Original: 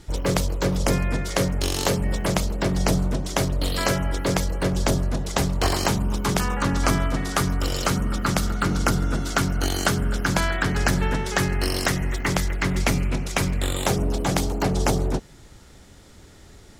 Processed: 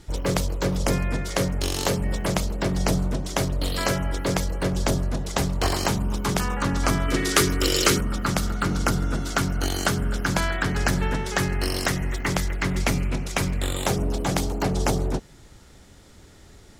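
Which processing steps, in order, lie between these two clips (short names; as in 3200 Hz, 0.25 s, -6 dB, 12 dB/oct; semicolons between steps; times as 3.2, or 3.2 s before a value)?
7.08–8.01 EQ curve 220 Hz 0 dB, 370 Hz +12 dB, 740 Hz -3 dB, 2100 Hz +9 dB; gain -1.5 dB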